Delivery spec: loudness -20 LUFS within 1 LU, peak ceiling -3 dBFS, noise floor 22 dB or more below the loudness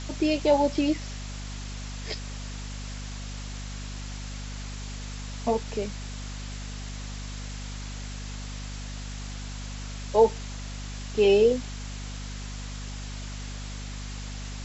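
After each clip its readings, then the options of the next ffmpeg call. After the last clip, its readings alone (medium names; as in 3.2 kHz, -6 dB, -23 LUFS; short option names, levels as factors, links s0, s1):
hum 50 Hz; highest harmonic 250 Hz; hum level -34 dBFS; noise floor -36 dBFS; noise floor target -53 dBFS; loudness -30.5 LUFS; peak level -8.5 dBFS; loudness target -20.0 LUFS
-> -af "bandreject=f=50:t=h:w=6,bandreject=f=100:t=h:w=6,bandreject=f=150:t=h:w=6,bandreject=f=200:t=h:w=6,bandreject=f=250:t=h:w=6"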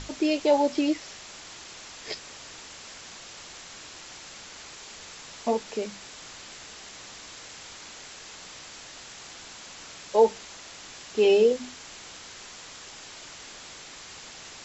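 hum not found; noise floor -45 dBFS; noise floor target -48 dBFS
-> -af "afftdn=nr=6:nf=-45"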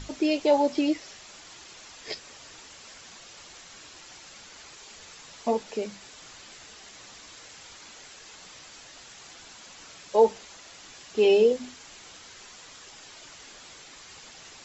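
noise floor -49 dBFS; loudness -25.5 LUFS; peak level -9.0 dBFS; loudness target -20.0 LUFS
-> -af "volume=1.88"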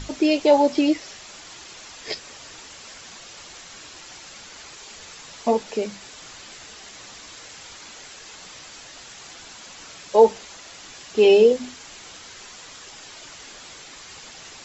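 loudness -20.0 LUFS; peak level -3.5 dBFS; noise floor -43 dBFS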